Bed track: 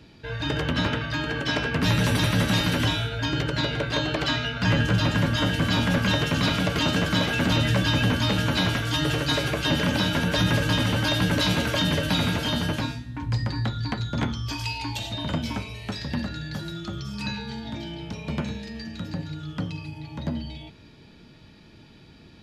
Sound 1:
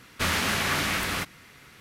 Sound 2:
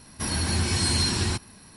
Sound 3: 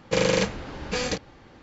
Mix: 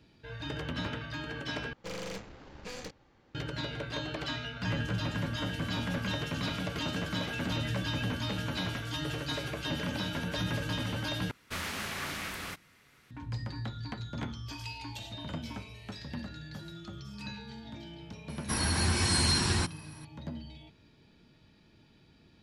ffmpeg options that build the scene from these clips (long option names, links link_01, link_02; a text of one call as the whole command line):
ffmpeg -i bed.wav -i cue0.wav -i cue1.wav -i cue2.wav -filter_complex "[0:a]volume=-11dB[link_01];[3:a]aeval=exprs='(tanh(17.8*val(0)+0.6)-tanh(0.6))/17.8':channel_layout=same[link_02];[2:a]equalizer=frequency=1300:width=0.86:gain=4[link_03];[link_01]asplit=3[link_04][link_05][link_06];[link_04]atrim=end=1.734[link_07];[link_02]atrim=end=1.62,asetpts=PTS-STARTPTS,volume=-11dB[link_08];[link_05]atrim=start=3.346:end=11.314[link_09];[1:a]atrim=end=1.8,asetpts=PTS-STARTPTS,volume=-11dB[link_10];[link_06]atrim=start=13.106[link_11];[link_03]atrim=end=1.76,asetpts=PTS-STARTPTS,volume=-3.5dB,afade=type=in:duration=0.004:curve=hsin,afade=type=out:start_time=1.756:duration=0.004:curve=hsin,adelay=18290[link_12];[link_07][link_08]acrossfade=duration=0.004:curve1=hsin:curve2=hsin[link_13];[link_13][link_09]acrossfade=duration=0.004:curve1=hsin:curve2=hsin[link_14];[link_14][link_10]acrossfade=duration=0.004:curve1=hsin:curve2=hsin[link_15];[link_15][link_11]acrossfade=duration=0.004:curve1=hsin:curve2=hsin[link_16];[link_16][link_12]amix=inputs=2:normalize=0" out.wav